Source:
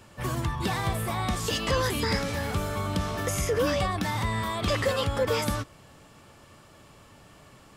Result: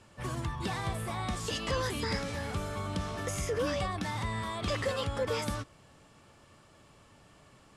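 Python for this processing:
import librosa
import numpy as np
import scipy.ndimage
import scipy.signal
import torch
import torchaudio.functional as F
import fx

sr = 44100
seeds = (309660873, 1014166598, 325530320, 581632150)

y = scipy.signal.sosfilt(scipy.signal.butter(4, 11000.0, 'lowpass', fs=sr, output='sos'), x)
y = y * librosa.db_to_amplitude(-6.0)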